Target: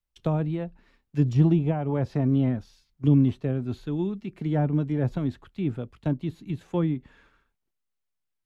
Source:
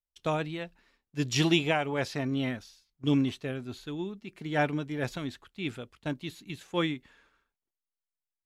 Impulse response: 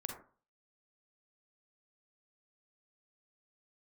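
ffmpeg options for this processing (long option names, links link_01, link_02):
-filter_complex "[0:a]acrossover=split=220[link_01][link_02];[link_02]acompressor=threshold=-30dB:ratio=6[link_03];[link_01][link_03]amix=inputs=2:normalize=0,bass=frequency=250:gain=7,treble=frequency=4000:gain=-5,acrossover=split=1100[link_04][link_05];[link_05]acompressor=threshold=-56dB:ratio=6[link_06];[link_04][link_06]amix=inputs=2:normalize=0,volume=5dB"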